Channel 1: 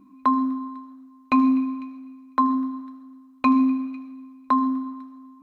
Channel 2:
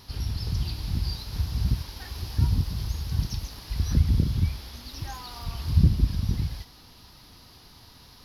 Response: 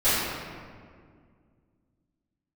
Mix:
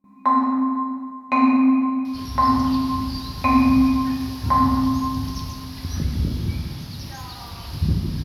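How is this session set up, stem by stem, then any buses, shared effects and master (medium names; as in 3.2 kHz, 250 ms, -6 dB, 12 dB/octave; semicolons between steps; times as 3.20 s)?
-6.0 dB, 0.00 s, send -7 dB, graphic EQ with 31 bands 200 Hz +10 dB, 315 Hz -11 dB, 800 Hz +10 dB, 1.25 kHz -4 dB, 2 kHz +8 dB, 3.15 kHz -6 dB
+0.5 dB, 2.05 s, send -18 dB, none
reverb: on, RT60 2.0 s, pre-delay 3 ms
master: high-pass 130 Hz 6 dB/octave; gate with hold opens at -44 dBFS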